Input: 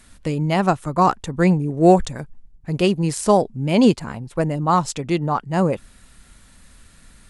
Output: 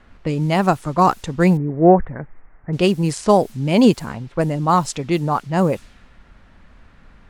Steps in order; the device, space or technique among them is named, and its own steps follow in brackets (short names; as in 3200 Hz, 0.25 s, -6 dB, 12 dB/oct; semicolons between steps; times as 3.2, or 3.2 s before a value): cassette deck with a dynamic noise filter (white noise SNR 30 dB; low-pass opened by the level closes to 1600 Hz, open at -15 dBFS); 1.57–2.73 elliptic low-pass 2000 Hz, stop band 60 dB; gain +1.5 dB